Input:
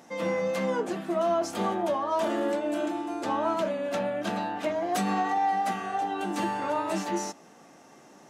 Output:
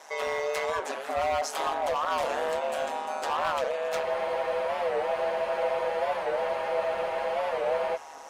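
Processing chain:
high-pass filter 570 Hz 24 dB per octave
in parallel at −2.5 dB: downward compressor, threshold −42 dBFS, peak gain reduction 17 dB
on the sum: hard clipping −27 dBFS, distortion −12 dB
ring modulation 75 Hz
on a send: feedback echo with a low-pass in the loop 510 ms, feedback 63%, low-pass 3,300 Hz, level −14.5 dB
on the sum: frozen spectrum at 0:04.07, 3.89 s
wow of a warped record 45 rpm, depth 160 cents
level +5 dB

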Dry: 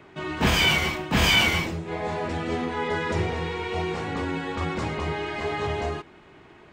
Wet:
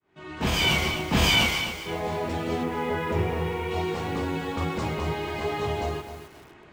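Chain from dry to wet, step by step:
fade in at the beginning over 0.74 s
dynamic equaliser 1,700 Hz, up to −5 dB, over −40 dBFS, Q 1.7
0:01.46–0:01.86: high-pass filter 1,100 Hz 6 dB per octave
0:02.63–0:03.71: flat-topped bell 6,000 Hz −10.5 dB
feedback echo at a low word length 258 ms, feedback 35%, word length 7 bits, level −10 dB

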